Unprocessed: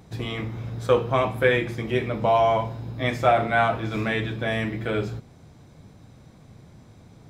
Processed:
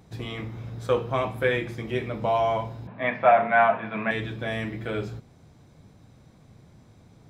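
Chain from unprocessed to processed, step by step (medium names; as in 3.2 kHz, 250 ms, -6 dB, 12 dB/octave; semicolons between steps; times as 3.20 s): 2.87–4.11 s: cabinet simulation 200–2900 Hz, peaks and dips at 200 Hz +8 dB, 340 Hz -9 dB, 660 Hz +7 dB, 990 Hz +9 dB, 1.7 kHz +8 dB, 2.5 kHz +5 dB; trim -4 dB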